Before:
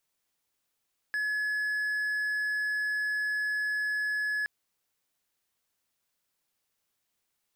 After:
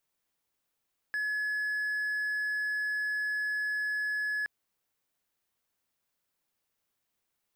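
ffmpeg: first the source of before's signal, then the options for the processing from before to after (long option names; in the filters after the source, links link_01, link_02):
-f lavfi -i "aevalsrc='0.0531*(1-4*abs(mod(1700*t+0.25,1)-0.5))':duration=3.32:sample_rate=44100"
-af "equalizer=frequency=6600:width=0.33:gain=-4"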